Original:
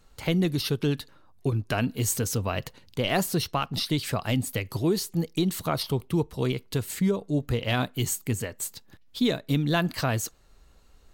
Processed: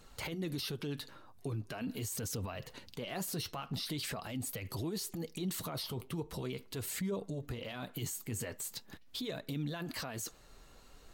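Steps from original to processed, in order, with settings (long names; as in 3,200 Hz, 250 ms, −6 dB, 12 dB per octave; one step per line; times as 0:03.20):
low-shelf EQ 120 Hz −7 dB
downward compressor 3 to 1, threshold −29 dBFS, peak gain reduction 7.5 dB
brickwall limiter −34.5 dBFS, peak gain reduction 18 dB
flanger 0.42 Hz, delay 0.2 ms, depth 8.6 ms, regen −56%
level +8 dB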